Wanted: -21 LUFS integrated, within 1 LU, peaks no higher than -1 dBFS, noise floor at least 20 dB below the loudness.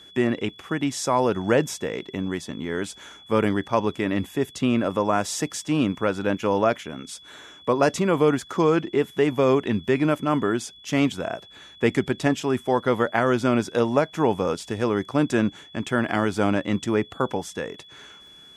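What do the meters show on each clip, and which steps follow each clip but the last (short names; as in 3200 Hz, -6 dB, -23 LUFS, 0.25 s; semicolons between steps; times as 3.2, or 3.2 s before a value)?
ticks 29/s; steady tone 3400 Hz; tone level -46 dBFS; loudness -24.0 LUFS; peak -5.5 dBFS; loudness target -21.0 LUFS
-> de-click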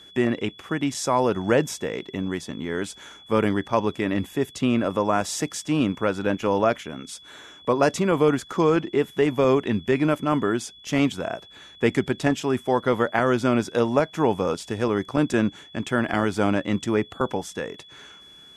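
ticks 0/s; steady tone 3400 Hz; tone level -46 dBFS
-> notch 3400 Hz, Q 30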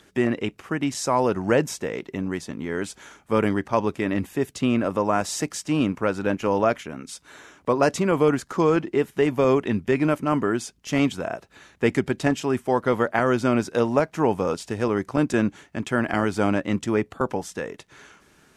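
steady tone none; loudness -24.0 LUFS; peak -5.5 dBFS; loudness target -21.0 LUFS
-> gain +3 dB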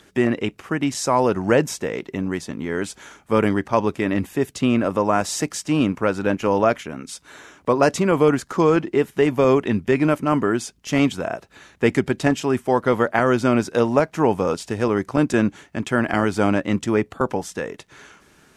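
loudness -21.0 LUFS; peak -2.5 dBFS; noise floor -55 dBFS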